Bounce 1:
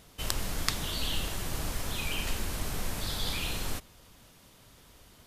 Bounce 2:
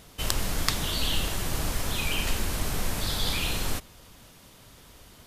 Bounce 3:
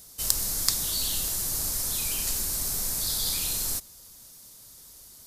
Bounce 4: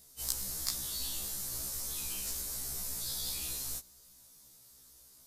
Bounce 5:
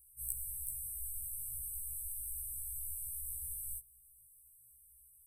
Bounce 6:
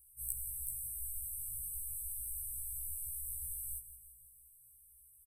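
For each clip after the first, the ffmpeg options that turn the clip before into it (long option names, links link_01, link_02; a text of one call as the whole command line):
ffmpeg -i in.wav -af "acontrast=48,volume=-1dB" out.wav
ffmpeg -i in.wav -af "aexciter=amount=6.2:drive=4.7:freq=4200,volume=-9dB" out.wav
ffmpeg -i in.wav -af "afftfilt=real='re*1.73*eq(mod(b,3),0)':imag='im*1.73*eq(mod(b,3),0)':win_size=2048:overlap=0.75,volume=-7dB" out.wav
ffmpeg -i in.wav -af "afftfilt=real='re*(1-between(b*sr/4096,120,7900))':imag='im*(1-between(b*sr/4096,120,7900))':win_size=4096:overlap=0.75,volume=-2.5dB" out.wav
ffmpeg -i in.wav -af "aecho=1:1:170|340|510|680|850|1020:0.224|0.123|0.0677|0.0372|0.0205|0.0113" out.wav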